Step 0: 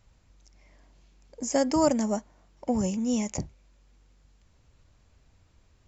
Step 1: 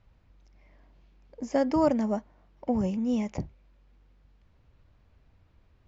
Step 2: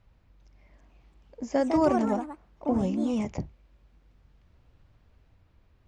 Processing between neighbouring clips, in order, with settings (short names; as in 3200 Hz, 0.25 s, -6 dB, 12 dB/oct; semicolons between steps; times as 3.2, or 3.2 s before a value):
air absorption 230 m
echoes that change speed 0.401 s, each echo +3 st, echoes 2, each echo -6 dB